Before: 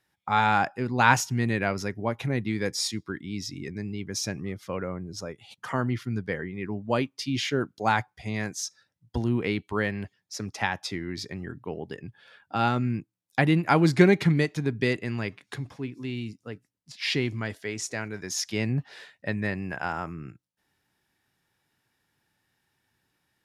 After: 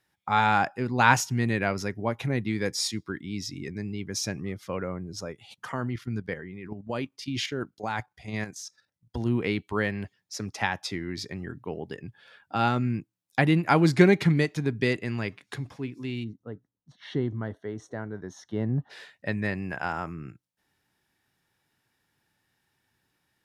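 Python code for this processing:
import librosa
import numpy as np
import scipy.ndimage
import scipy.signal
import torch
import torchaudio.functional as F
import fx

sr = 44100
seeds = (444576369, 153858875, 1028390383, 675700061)

y = fx.level_steps(x, sr, step_db=10, at=(5.65, 9.26))
y = fx.moving_average(y, sr, points=18, at=(16.23, 18.89), fade=0.02)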